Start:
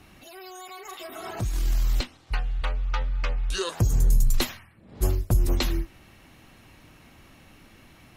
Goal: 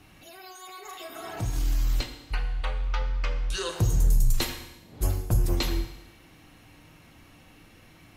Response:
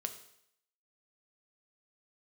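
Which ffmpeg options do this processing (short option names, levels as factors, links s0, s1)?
-filter_complex "[0:a]bandreject=f=63.2:t=h:w=4,bandreject=f=126.4:t=h:w=4,bandreject=f=189.6:t=h:w=4,bandreject=f=252.8:t=h:w=4,bandreject=f=316:t=h:w=4,bandreject=f=379.2:t=h:w=4,bandreject=f=442.4:t=h:w=4,bandreject=f=505.6:t=h:w=4,bandreject=f=568.8:t=h:w=4,bandreject=f=632:t=h:w=4,bandreject=f=695.2:t=h:w=4,bandreject=f=758.4:t=h:w=4,bandreject=f=821.6:t=h:w=4,bandreject=f=884.8:t=h:w=4,bandreject=f=948:t=h:w=4,bandreject=f=1011.2:t=h:w=4,bandreject=f=1074.4:t=h:w=4,bandreject=f=1137.6:t=h:w=4,bandreject=f=1200.8:t=h:w=4,bandreject=f=1264:t=h:w=4,bandreject=f=1327.2:t=h:w=4,bandreject=f=1390.4:t=h:w=4,bandreject=f=1453.6:t=h:w=4,bandreject=f=1516.8:t=h:w=4,bandreject=f=1580:t=h:w=4,bandreject=f=1643.2:t=h:w=4,bandreject=f=1706.4:t=h:w=4,bandreject=f=1769.6:t=h:w=4,bandreject=f=1832.8:t=h:w=4,bandreject=f=1896:t=h:w=4,bandreject=f=1959.2:t=h:w=4,bandreject=f=2022.4:t=h:w=4,bandreject=f=2085.6:t=h:w=4,bandreject=f=2148.8:t=h:w=4,bandreject=f=2212:t=h:w=4,bandreject=f=2275.2:t=h:w=4[s0];[1:a]atrim=start_sample=2205,asetrate=32193,aresample=44100[s1];[s0][s1]afir=irnorm=-1:irlink=0,volume=0.794"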